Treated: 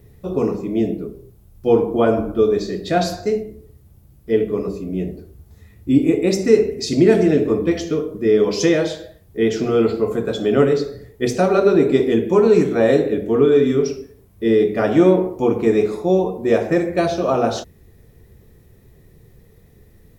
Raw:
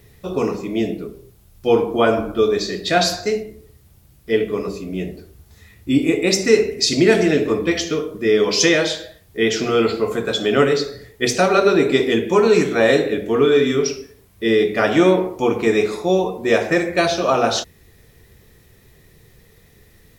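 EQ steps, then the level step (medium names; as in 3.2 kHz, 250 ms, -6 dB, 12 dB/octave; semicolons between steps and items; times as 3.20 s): tilt shelf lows +7.5 dB, about 1.1 kHz; treble shelf 7.9 kHz +8.5 dB; -4.5 dB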